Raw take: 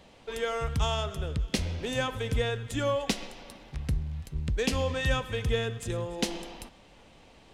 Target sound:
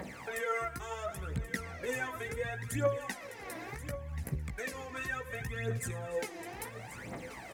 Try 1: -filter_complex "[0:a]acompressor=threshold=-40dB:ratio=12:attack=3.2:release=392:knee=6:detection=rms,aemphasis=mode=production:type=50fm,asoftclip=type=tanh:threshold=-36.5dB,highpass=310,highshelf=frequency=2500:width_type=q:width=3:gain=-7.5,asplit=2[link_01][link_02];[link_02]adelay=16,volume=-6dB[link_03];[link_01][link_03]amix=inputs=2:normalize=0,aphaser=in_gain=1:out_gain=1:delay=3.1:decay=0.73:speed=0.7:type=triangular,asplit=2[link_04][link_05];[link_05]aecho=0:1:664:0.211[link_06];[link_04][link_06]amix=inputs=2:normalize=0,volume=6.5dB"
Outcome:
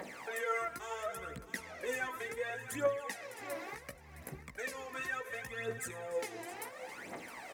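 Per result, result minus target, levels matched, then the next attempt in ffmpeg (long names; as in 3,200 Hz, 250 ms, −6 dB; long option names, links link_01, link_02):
125 Hz band −12.5 dB; soft clipping: distortion +14 dB; echo 418 ms early
-filter_complex "[0:a]acompressor=threshold=-40dB:ratio=12:attack=3.2:release=392:knee=6:detection=rms,aemphasis=mode=production:type=50fm,asoftclip=type=tanh:threshold=-36.5dB,highpass=120,highshelf=frequency=2500:width_type=q:width=3:gain=-7.5,asplit=2[link_01][link_02];[link_02]adelay=16,volume=-6dB[link_03];[link_01][link_03]amix=inputs=2:normalize=0,aphaser=in_gain=1:out_gain=1:delay=3.1:decay=0.73:speed=0.7:type=triangular,asplit=2[link_04][link_05];[link_05]aecho=0:1:664:0.211[link_06];[link_04][link_06]amix=inputs=2:normalize=0,volume=6.5dB"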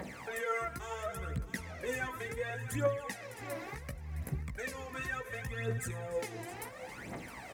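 soft clipping: distortion +14 dB; echo 418 ms early
-filter_complex "[0:a]acompressor=threshold=-40dB:ratio=12:attack=3.2:release=392:knee=6:detection=rms,aemphasis=mode=production:type=50fm,asoftclip=type=tanh:threshold=-26.5dB,highpass=120,highshelf=frequency=2500:width_type=q:width=3:gain=-7.5,asplit=2[link_01][link_02];[link_02]adelay=16,volume=-6dB[link_03];[link_01][link_03]amix=inputs=2:normalize=0,aphaser=in_gain=1:out_gain=1:delay=3.1:decay=0.73:speed=0.7:type=triangular,asplit=2[link_04][link_05];[link_05]aecho=0:1:664:0.211[link_06];[link_04][link_06]amix=inputs=2:normalize=0,volume=6.5dB"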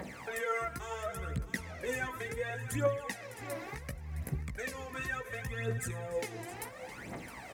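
echo 418 ms early
-filter_complex "[0:a]acompressor=threshold=-40dB:ratio=12:attack=3.2:release=392:knee=6:detection=rms,aemphasis=mode=production:type=50fm,asoftclip=type=tanh:threshold=-26.5dB,highpass=120,highshelf=frequency=2500:width_type=q:width=3:gain=-7.5,asplit=2[link_01][link_02];[link_02]adelay=16,volume=-6dB[link_03];[link_01][link_03]amix=inputs=2:normalize=0,aphaser=in_gain=1:out_gain=1:delay=3.1:decay=0.73:speed=0.7:type=triangular,asplit=2[link_04][link_05];[link_05]aecho=0:1:1082:0.211[link_06];[link_04][link_06]amix=inputs=2:normalize=0,volume=6.5dB"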